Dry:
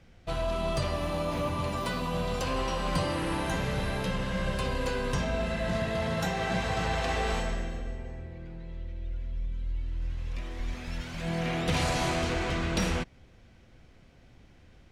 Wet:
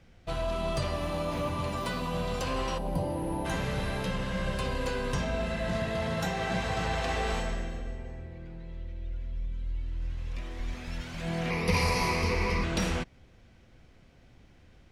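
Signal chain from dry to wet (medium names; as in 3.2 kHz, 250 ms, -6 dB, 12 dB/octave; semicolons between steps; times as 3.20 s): 2.78–3.45 s: time-frequency box 1–9.4 kHz -15 dB; 11.50–12.64 s: rippled EQ curve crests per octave 0.86, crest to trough 14 dB; trim -1 dB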